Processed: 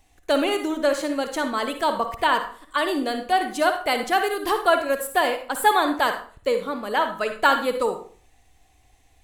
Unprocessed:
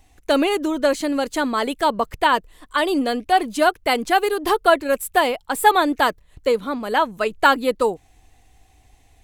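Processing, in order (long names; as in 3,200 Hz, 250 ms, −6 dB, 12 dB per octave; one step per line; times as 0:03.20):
low-shelf EQ 350 Hz −3.5 dB
tuned comb filter 570 Hz, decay 0.38 s, mix 60%
on a send: convolution reverb RT60 0.40 s, pre-delay 46 ms, DRR 6.5 dB
on the sum: level +4.5 dB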